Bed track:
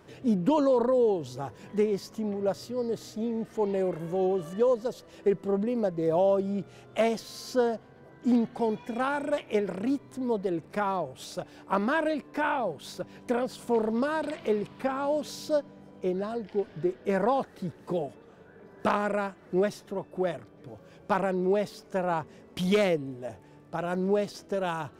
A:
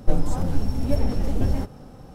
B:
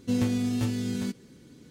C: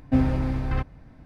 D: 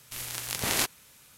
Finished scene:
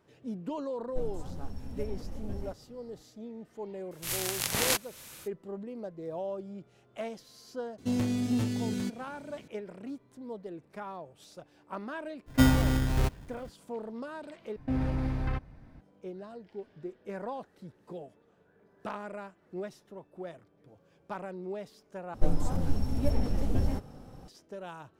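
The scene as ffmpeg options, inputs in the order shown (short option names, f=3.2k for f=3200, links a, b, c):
-filter_complex "[1:a]asplit=2[a][b];[3:a]asplit=2[c][d];[0:a]volume=-12.5dB[e];[4:a]dynaudnorm=f=110:g=3:m=15dB[f];[2:a]asoftclip=type=tanh:threshold=-20.5dB[g];[c]acrusher=samples=26:mix=1:aa=0.000001[h];[d]alimiter=limit=-18dB:level=0:latency=1:release=34[i];[e]asplit=3[j][k][l];[j]atrim=end=14.564[m];[i]atrim=end=1.25,asetpts=PTS-STARTPTS,volume=-4dB[n];[k]atrim=start=15.806:end=22.144[o];[b]atrim=end=2.14,asetpts=PTS-STARTPTS,volume=-5.5dB[p];[l]atrim=start=24.276[q];[a]atrim=end=2.14,asetpts=PTS-STARTPTS,volume=-16.5dB,afade=t=in:d=0.004:c=hsin,afade=t=out:st=2.136:d=0.004:c=hsin,adelay=880[r];[f]atrim=end=1.37,asetpts=PTS-STARTPTS,volume=-7.5dB,afade=t=in:d=0.004:c=hsin,afade=t=out:st=1.366:d=0.004:c=hsin,adelay=3910[s];[g]atrim=end=1.7,asetpts=PTS-STARTPTS,volume=-1.5dB,afade=t=in:d=0.004:c=hsin,afade=t=out:st=1.696:d=0.004:c=hsin,adelay=343098S[t];[h]atrim=end=1.25,asetpts=PTS-STARTPTS,volume=-1dB,afade=t=in:d=0.02,afade=t=out:st=1.23:d=0.02,adelay=12260[u];[m][n]acrossfade=d=0.004:c1=hsin:c2=hsin[v];[v][o]acrossfade=d=0.004:c1=hsin:c2=hsin[w];[w][p]acrossfade=d=0.004:c1=hsin:c2=hsin[x];[x][q]acrossfade=d=0.004:c1=hsin:c2=hsin[y];[y][r][s][t][u]amix=inputs=5:normalize=0"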